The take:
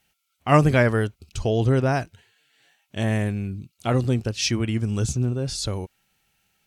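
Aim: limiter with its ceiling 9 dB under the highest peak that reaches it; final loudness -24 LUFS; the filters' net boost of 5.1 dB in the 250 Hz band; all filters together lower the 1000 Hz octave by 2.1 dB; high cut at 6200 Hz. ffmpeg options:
-af "lowpass=6.2k,equalizer=f=250:t=o:g=6.5,equalizer=f=1k:t=o:g=-3.5,volume=-1dB,alimiter=limit=-11.5dB:level=0:latency=1"

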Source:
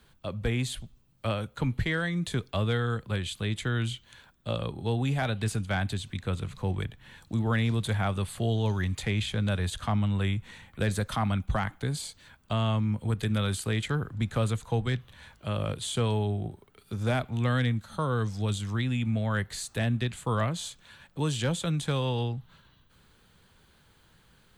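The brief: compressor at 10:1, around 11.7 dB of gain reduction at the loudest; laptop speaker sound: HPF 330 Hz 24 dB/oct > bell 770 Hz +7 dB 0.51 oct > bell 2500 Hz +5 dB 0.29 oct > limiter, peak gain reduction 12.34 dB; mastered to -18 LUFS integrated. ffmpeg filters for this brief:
-af "acompressor=threshold=-35dB:ratio=10,highpass=f=330:w=0.5412,highpass=f=330:w=1.3066,equalizer=f=770:t=o:w=0.51:g=7,equalizer=f=2.5k:t=o:w=0.29:g=5,volume=27.5dB,alimiter=limit=-6.5dB:level=0:latency=1"

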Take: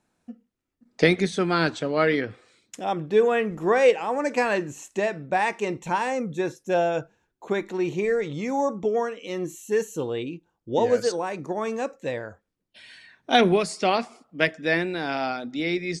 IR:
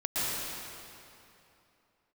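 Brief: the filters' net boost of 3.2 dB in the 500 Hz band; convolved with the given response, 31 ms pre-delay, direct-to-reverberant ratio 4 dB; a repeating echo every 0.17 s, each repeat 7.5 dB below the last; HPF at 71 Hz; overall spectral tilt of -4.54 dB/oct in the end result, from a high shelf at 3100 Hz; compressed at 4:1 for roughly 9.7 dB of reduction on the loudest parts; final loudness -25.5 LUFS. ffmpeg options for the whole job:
-filter_complex "[0:a]highpass=71,equalizer=f=500:t=o:g=3.5,highshelf=f=3.1k:g=6,acompressor=threshold=-22dB:ratio=4,aecho=1:1:170|340|510|680|850:0.422|0.177|0.0744|0.0312|0.0131,asplit=2[a][b];[1:a]atrim=start_sample=2205,adelay=31[c];[b][c]afir=irnorm=-1:irlink=0,volume=-13.5dB[d];[a][d]amix=inputs=2:normalize=0,volume=-0.5dB"

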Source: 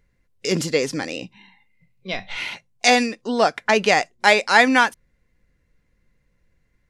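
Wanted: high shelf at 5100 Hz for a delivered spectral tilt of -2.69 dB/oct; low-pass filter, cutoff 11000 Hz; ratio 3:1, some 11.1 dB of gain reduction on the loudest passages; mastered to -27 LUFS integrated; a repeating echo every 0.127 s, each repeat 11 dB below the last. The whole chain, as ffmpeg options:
-af "lowpass=11k,highshelf=f=5.1k:g=6,acompressor=threshold=-24dB:ratio=3,aecho=1:1:127|254|381:0.282|0.0789|0.0221,volume=-0.5dB"

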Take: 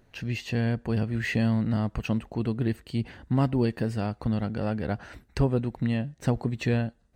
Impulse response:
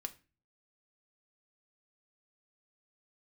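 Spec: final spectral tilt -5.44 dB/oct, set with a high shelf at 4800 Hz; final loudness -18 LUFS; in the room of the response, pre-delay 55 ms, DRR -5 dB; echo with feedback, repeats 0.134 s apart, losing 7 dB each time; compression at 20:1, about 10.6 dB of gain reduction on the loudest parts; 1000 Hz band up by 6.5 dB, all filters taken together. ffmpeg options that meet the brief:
-filter_complex "[0:a]equalizer=f=1k:t=o:g=8.5,highshelf=f=4.8k:g=6.5,acompressor=threshold=-27dB:ratio=20,aecho=1:1:134|268|402|536|670:0.447|0.201|0.0905|0.0407|0.0183,asplit=2[a][b];[1:a]atrim=start_sample=2205,adelay=55[c];[b][c]afir=irnorm=-1:irlink=0,volume=7.5dB[d];[a][d]amix=inputs=2:normalize=0,volume=8.5dB"

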